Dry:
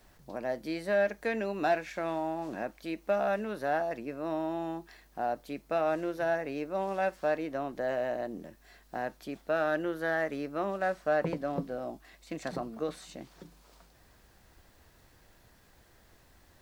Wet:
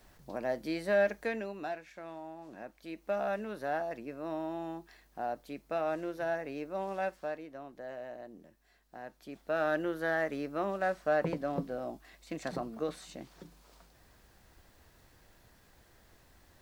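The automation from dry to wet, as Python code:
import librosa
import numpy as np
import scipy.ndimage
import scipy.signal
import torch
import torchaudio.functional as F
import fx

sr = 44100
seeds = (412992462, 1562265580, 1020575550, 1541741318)

y = fx.gain(x, sr, db=fx.line((1.15, 0.0), (1.76, -12.0), (2.43, -12.0), (3.18, -4.0), (7.04, -4.0), (7.47, -11.5), (8.99, -11.5), (9.65, -1.0)))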